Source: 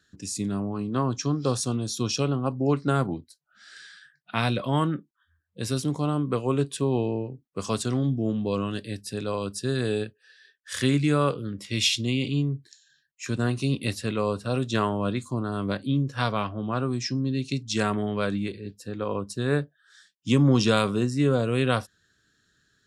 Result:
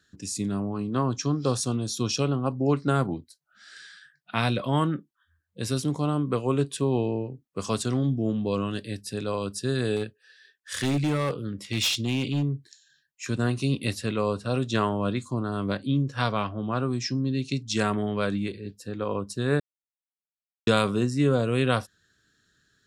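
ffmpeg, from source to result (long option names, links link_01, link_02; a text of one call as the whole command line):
ffmpeg -i in.wav -filter_complex "[0:a]asettb=1/sr,asplit=3[link_01][link_02][link_03];[link_01]atrim=end=9.964[link_04];[link_02]atrim=start=9.96:end=12.43,asetpts=PTS-STARTPTS,afade=type=in:duration=0.004:curve=qsin,afade=type=out:start_time=2.466:duration=0.004:curve=qsin,asoftclip=type=hard:threshold=-20.5dB[link_05];[link_03]atrim=start=12.426[link_06];[link_04][link_05]acrossfade=duration=0.004:curve1=hsin:curve2=qsin[link_07];[link_07][link_06]acrossfade=duration=0.004:curve1=qsin:curve2=hsin,asettb=1/sr,asplit=3[link_08][link_09][link_10];[link_08]atrim=end=14.064[link_11];[link_09]atrim=start=14.06:end=17.61,asetpts=PTS-STARTPTS,afade=type=in:duration=0.004:curve=qsin,afade=type=out:start_time=3.546:duration=0.004:curve=qsin,lowpass=10000[link_12];[link_10]atrim=start=17.606[link_13];[link_11][link_12]acrossfade=duration=0.004:curve1=hsin:curve2=qsin[link_14];[link_14][link_13]acrossfade=duration=0.004:curve1=qsin:curve2=hsin,asplit=3[link_15][link_16][link_17];[link_15]atrim=end=19.6,asetpts=PTS-STARTPTS,afade=type=out:start_time=19.596:duration=0.004:curve=hsin[link_18];[link_16]atrim=start=19.6:end=20.67,asetpts=PTS-STARTPTS,volume=0[link_19];[link_17]atrim=start=20.67,asetpts=PTS-STARTPTS,afade=type=in:duration=0.004:curve=hsin[link_20];[link_18][link_19][link_20]concat=n=3:v=0:a=1" out.wav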